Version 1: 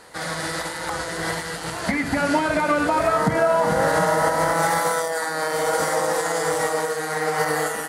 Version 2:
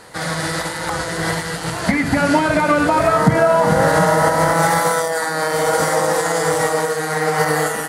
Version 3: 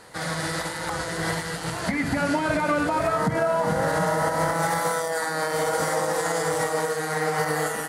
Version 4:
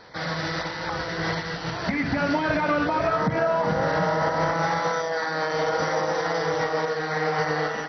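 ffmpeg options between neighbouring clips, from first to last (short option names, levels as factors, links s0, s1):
-af "equalizer=f=130:t=o:w=1.3:g=6,volume=1.68"
-af "alimiter=limit=0.398:level=0:latency=1:release=147,volume=0.501"
-ar 24000 -c:a mp2 -b:a 32k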